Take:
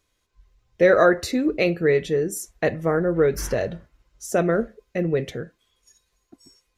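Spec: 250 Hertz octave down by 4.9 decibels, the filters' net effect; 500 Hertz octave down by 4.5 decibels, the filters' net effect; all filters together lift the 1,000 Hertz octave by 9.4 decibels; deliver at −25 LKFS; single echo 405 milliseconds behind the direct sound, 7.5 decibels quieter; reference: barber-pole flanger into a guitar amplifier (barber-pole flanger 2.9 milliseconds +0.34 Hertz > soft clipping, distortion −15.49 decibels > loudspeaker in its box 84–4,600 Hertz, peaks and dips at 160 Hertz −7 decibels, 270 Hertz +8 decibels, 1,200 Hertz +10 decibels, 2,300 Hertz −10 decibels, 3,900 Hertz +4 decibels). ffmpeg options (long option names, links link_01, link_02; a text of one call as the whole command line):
ffmpeg -i in.wav -filter_complex "[0:a]equalizer=frequency=250:width_type=o:gain=-8.5,equalizer=frequency=500:width_type=o:gain=-5.5,equalizer=frequency=1000:width_type=o:gain=7,aecho=1:1:405:0.422,asplit=2[link_01][link_02];[link_02]adelay=2.9,afreqshift=0.34[link_03];[link_01][link_03]amix=inputs=2:normalize=1,asoftclip=threshold=-16.5dB,highpass=84,equalizer=frequency=160:width_type=q:width=4:gain=-7,equalizer=frequency=270:width_type=q:width=4:gain=8,equalizer=frequency=1200:width_type=q:width=4:gain=10,equalizer=frequency=2300:width_type=q:width=4:gain=-10,equalizer=frequency=3900:width_type=q:width=4:gain=4,lowpass=frequency=4600:width=0.5412,lowpass=frequency=4600:width=1.3066,volume=1.5dB" out.wav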